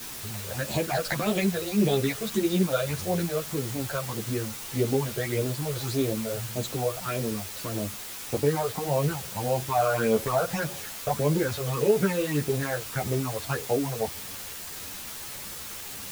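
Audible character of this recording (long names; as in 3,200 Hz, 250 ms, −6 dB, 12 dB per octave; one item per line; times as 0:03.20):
phaser sweep stages 8, 1.7 Hz, lowest notch 250–1,700 Hz
a quantiser's noise floor 6 bits, dither triangular
a shimmering, thickened sound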